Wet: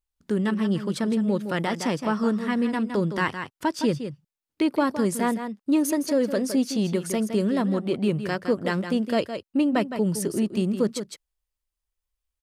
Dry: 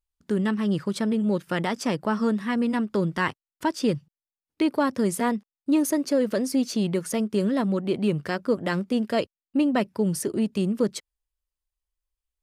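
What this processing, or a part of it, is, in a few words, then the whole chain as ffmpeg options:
ducked delay: -filter_complex "[0:a]asplit=3[link_01][link_02][link_03];[link_02]adelay=163,volume=-3dB[link_04];[link_03]apad=whole_len=555017[link_05];[link_04][link_05]sidechaincompress=threshold=-29dB:ratio=8:attack=38:release=456[link_06];[link_01][link_06]amix=inputs=2:normalize=0"

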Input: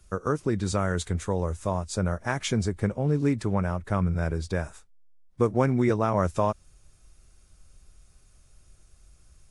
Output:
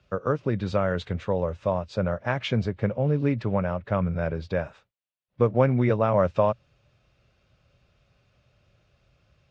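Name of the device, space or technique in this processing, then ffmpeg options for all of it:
guitar cabinet: -af "highpass=100,equalizer=frequency=120:width_type=q:width=4:gain=6,equalizer=frequency=340:width_type=q:width=4:gain=-4,equalizer=frequency=560:width_type=q:width=4:gain=8,equalizer=frequency=2700:width_type=q:width=4:gain=5,lowpass=frequency=4100:width=0.5412,lowpass=frequency=4100:width=1.3066"

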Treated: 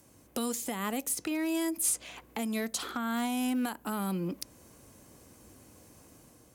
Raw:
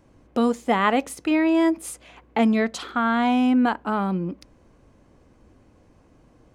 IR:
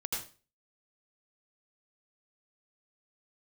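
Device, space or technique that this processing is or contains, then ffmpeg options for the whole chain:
FM broadcast chain: -filter_complex "[0:a]highpass=70,dynaudnorm=framelen=130:gausssize=7:maxgain=4dB,acrossover=split=350|1600|6700[link_01][link_02][link_03][link_04];[link_01]acompressor=threshold=-28dB:ratio=4[link_05];[link_02]acompressor=threshold=-32dB:ratio=4[link_06];[link_03]acompressor=threshold=-41dB:ratio=4[link_07];[link_04]acompressor=threshold=-56dB:ratio=4[link_08];[link_05][link_06][link_07][link_08]amix=inputs=4:normalize=0,aemphasis=mode=production:type=50fm,alimiter=limit=-19.5dB:level=0:latency=1:release=249,asoftclip=type=hard:threshold=-21dB,lowpass=frequency=15000:width=0.5412,lowpass=frequency=15000:width=1.3066,aemphasis=mode=production:type=50fm,volume=-4dB"

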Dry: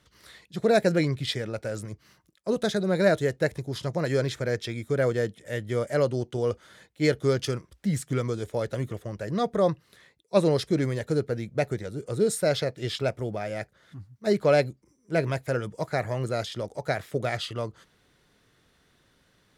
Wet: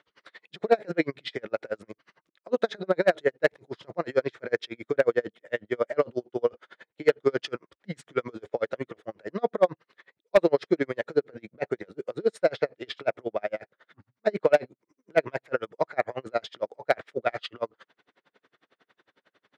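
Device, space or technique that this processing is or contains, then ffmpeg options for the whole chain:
helicopter radio: -af "highpass=360,lowpass=2700,aeval=exprs='val(0)*pow(10,-37*(0.5-0.5*cos(2*PI*11*n/s))/20)':channel_layout=same,asoftclip=type=hard:threshold=-18.5dB,volume=8.5dB"

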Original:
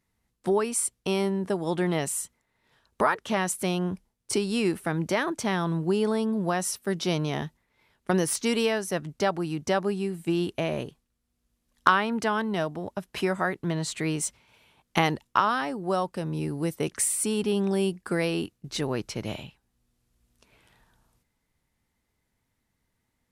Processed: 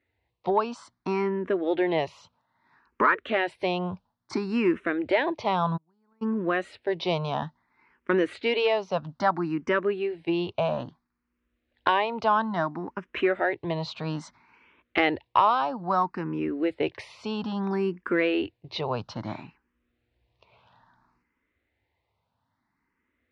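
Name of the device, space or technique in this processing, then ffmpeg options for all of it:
barber-pole phaser into a guitar amplifier: -filter_complex "[0:a]asplit=2[link_01][link_02];[link_02]afreqshift=0.6[link_03];[link_01][link_03]amix=inputs=2:normalize=1,asoftclip=type=tanh:threshold=-14.5dB,highpass=86,equalizer=frequency=140:width_type=q:width=4:gain=-8,equalizer=frequency=200:width_type=q:width=4:gain=-7,equalizer=frequency=440:width_type=q:width=4:gain=-3,equalizer=frequency=1000:width_type=q:width=4:gain=4,equalizer=frequency=3200:width_type=q:width=4:gain=-5,lowpass=frequency=3700:width=0.5412,lowpass=frequency=3700:width=1.3066,asplit=3[link_04][link_05][link_06];[link_04]afade=type=out:start_time=5.76:duration=0.02[link_07];[link_05]agate=range=-41dB:threshold=-26dB:ratio=16:detection=peak,afade=type=in:start_time=5.76:duration=0.02,afade=type=out:start_time=6.21:duration=0.02[link_08];[link_06]afade=type=in:start_time=6.21:duration=0.02[link_09];[link_07][link_08][link_09]amix=inputs=3:normalize=0,volume=6dB"

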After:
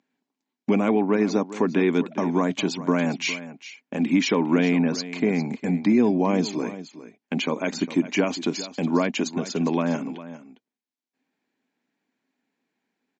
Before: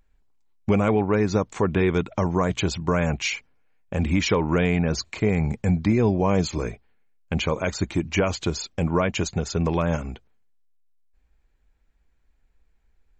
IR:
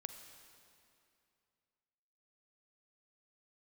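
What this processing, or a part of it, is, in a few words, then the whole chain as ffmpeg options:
television speaker: -af "highpass=97,highpass=frequency=190:width=0.5412,highpass=frequency=190:width=1.3066,equalizer=frequency=260:width_type=q:width=4:gain=10,equalizer=frequency=510:width_type=q:width=4:gain=-4,equalizer=frequency=1300:width_type=q:width=4:gain=-5,lowpass=frequency=6900:width=0.5412,lowpass=frequency=6900:width=1.3066,aecho=1:1:405:0.188"

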